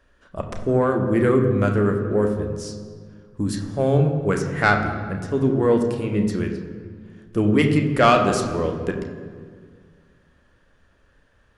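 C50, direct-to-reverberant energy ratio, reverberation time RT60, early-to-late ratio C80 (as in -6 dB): 6.5 dB, 3.5 dB, 1.8 s, 8.0 dB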